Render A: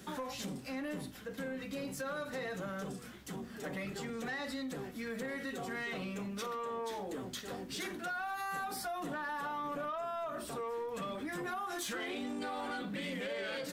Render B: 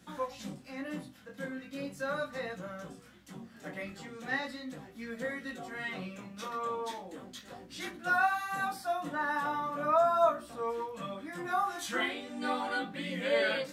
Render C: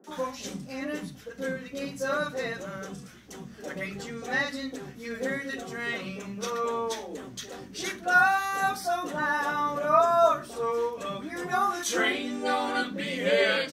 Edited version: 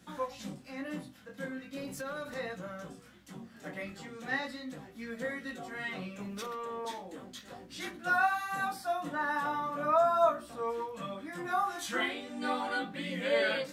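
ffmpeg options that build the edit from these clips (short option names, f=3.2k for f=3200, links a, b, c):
-filter_complex "[0:a]asplit=2[a][b];[1:a]asplit=3[c][d][e];[c]atrim=end=1.772[f];[a]atrim=start=1.768:end=2.342[g];[d]atrim=start=2.338:end=6.202[h];[b]atrim=start=6.198:end=6.852[i];[e]atrim=start=6.848[j];[f][g]acrossfade=d=0.004:c1=hsin:c2=hsin[k];[k][h]acrossfade=d=0.004:c1=hsin:c2=hsin[l];[l][i]acrossfade=d=0.004:c1=hsin:c2=hsin[m];[m][j]acrossfade=d=0.004:c1=hsin:c2=hsin"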